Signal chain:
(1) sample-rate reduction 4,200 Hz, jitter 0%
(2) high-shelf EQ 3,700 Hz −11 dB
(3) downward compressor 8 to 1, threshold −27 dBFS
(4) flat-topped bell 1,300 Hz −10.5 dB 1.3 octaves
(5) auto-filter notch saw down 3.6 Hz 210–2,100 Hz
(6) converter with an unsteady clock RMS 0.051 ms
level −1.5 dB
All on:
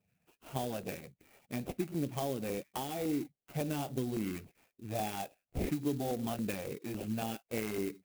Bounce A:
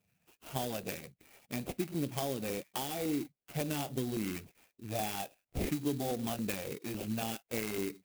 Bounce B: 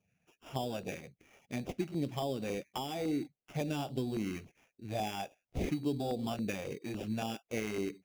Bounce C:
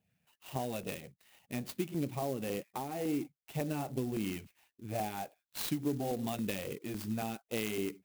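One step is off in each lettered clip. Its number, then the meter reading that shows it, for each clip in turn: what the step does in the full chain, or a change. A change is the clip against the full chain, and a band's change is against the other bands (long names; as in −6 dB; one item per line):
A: 2, 4 kHz band +4.5 dB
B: 6, 8 kHz band −3.0 dB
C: 1, distortion level −2 dB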